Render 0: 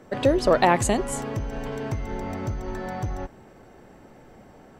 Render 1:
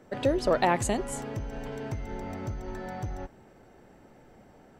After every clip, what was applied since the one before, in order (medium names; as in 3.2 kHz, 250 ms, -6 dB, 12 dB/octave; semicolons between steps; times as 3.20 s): band-stop 1.1 kHz, Q 23; trim -5.5 dB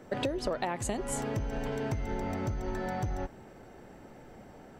compression 16:1, threshold -32 dBFS, peak gain reduction 14 dB; trim +4 dB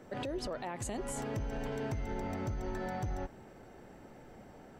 peak limiter -26.5 dBFS, peak gain reduction 8.5 dB; trim -2.5 dB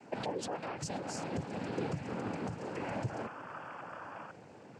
painted sound noise, 3.09–4.31 s, 540–1500 Hz -47 dBFS; noise-vocoded speech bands 8; trim +1 dB